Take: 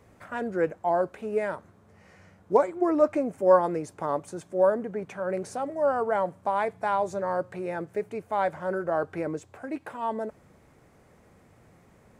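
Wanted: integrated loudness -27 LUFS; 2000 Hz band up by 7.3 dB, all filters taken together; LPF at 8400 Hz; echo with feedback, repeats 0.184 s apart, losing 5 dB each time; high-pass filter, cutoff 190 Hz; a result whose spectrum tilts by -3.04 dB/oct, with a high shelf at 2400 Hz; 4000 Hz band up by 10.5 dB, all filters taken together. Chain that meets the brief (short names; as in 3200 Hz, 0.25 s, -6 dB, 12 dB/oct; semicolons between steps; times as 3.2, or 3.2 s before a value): HPF 190 Hz; LPF 8400 Hz; bell 2000 Hz +6 dB; high shelf 2400 Hz +7 dB; bell 4000 Hz +5.5 dB; feedback echo 0.184 s, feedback 56%, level -5 dB; gain -2 dB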